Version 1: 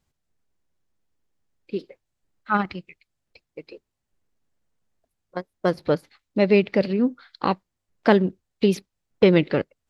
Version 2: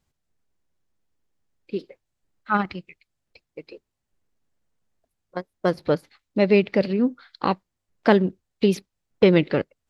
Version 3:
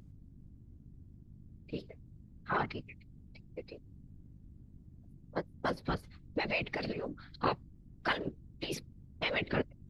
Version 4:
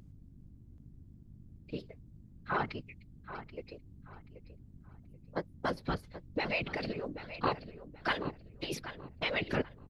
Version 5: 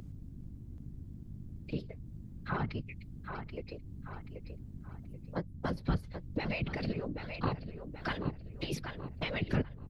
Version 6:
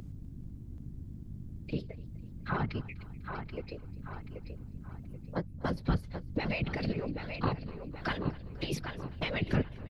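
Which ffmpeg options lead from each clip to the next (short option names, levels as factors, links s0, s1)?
-af anull
-af "afftfilt=real='re*lt(hypot(re,im),0.562)':imag='im*lt(hypot(re,im),0.562)':win_size=1024:overlap=0.75,aeval=exprs='val(0)+0.00501*(sin(2*PI*50*n/s)+sin(2*PI*2*50*n/s)/2+sin(2*PI*3*50*n/s)/3+sin(2*PI*4*50*n/s)/4+sin(2*PI*5*50*n/s)/5)':c=same,afftfilt=real='hypot(re,im)*cos(2*PI*random(0))':imag='hypot(re,im)*sin(2*PI*random(1))':win_size=512:overlap=0.75"
-filter_complex "[0:a]asplit=2[s0][s1];[s1]adelay=781,lowpass=f=4500:p=1,volume=0.251,asplit=2[s2][s3];[s3]adelay=781,lowpass=f=4500:p=1,volume=0.28,asplit=2[s4][s5];[s5]adelay=781,lowpass=f=4500:p=1,volume=0.28[s6];[s0][s2][s4][s6]amix=inputs=4:normalize=0"
-filter_complex "[0:a]acrossover=split=210[s0][s1];[s1]acompressor=threshold=0.002:ratio=2[s2];[s0][s2]amix=inputs=2:normalize=0,volume=2.51"
-af "aecho=1:1:249|498|747|996:0.0891|0.0508|0.029|0.0165,volume=1.26"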